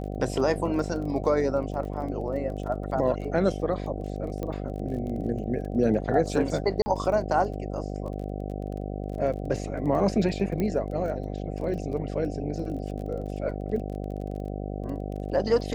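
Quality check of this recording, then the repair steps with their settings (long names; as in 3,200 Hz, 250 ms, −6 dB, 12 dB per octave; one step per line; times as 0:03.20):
mains buzz 50 Hz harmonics 15 −33 dBFS
surface crackle 22 per second −36 dBFS
0:04.43: click −20 dBFS
0:06.82–0:06.86: drop-out 40 ms
0:10.60: click −17 dBFS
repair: click removal
hum removal 50 Hz, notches 15
repair the gap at 0:06.82, 40 ms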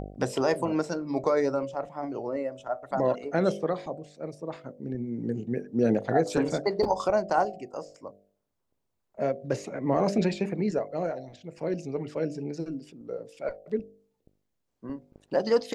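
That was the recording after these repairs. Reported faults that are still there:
none of them is left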